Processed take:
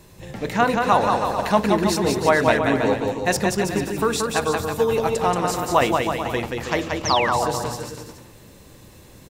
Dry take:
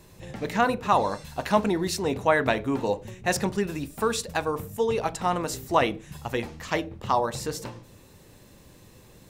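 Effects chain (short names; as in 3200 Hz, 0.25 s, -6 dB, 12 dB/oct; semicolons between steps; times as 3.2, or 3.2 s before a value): bouncing-ball echo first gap 0.18 s, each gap 0.8×, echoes 5; painted sound fall, 7.05–7.45, 580–6600 Hz -29 dBFS; gain +3.5 dB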